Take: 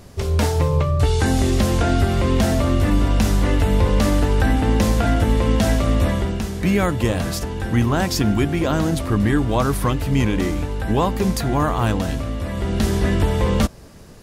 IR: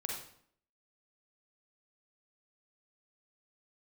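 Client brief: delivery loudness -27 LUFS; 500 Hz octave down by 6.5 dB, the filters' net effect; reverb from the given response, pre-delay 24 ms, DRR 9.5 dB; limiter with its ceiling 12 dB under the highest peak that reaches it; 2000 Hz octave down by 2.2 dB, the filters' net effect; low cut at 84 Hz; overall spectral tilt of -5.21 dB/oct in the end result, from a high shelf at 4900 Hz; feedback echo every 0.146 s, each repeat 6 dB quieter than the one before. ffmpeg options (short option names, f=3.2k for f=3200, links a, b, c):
-filter_complex "[0:a]highpass=84,equalizer=f=500:t=o:g=-8.5,equalizer=f=2k:t=o:g=-3.5,highshelf=f=4.9k:g=8,alimiter=limit=-16.5dB:level=0:latency=1,aecho=1:1:146|292|438|584|730|876:0.501|0.251|0.125|0.0626|0.0313|0.0157,asplit=2[a][b];[1:a]atrim=start_sample=2205,adelay=24[c];[b][c]afir=irnorm=-1:irlink=0,volume=-11dB[d];[a][d]amix=inputs=2:normalize=0,volume=-3.5dB"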